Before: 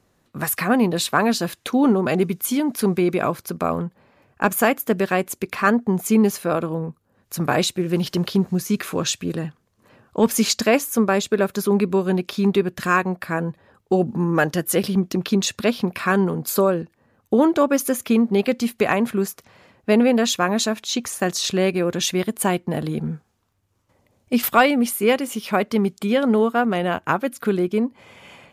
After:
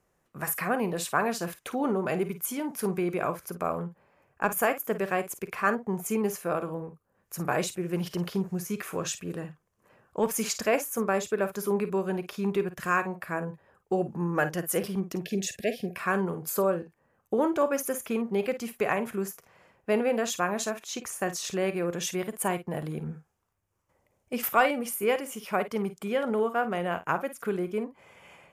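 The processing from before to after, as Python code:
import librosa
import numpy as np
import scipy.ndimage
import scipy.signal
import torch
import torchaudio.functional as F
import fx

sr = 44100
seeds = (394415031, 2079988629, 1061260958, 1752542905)

y = fx.graphic_eq_15(x, sr, hz=(100, 250, 4000), db=(-7, -8, -10))
y = fx.spec_box(y, sr, start_s=15.22, length_s=0.74, low_hz=760.0, high_hz=1600.0, gain_db=-27)
y = fx.room_early_taps(y, sr, ms=(40, 52), db=(-18.0, -12.5))
y = y * 10.0 ** (-6.5 / 20.0)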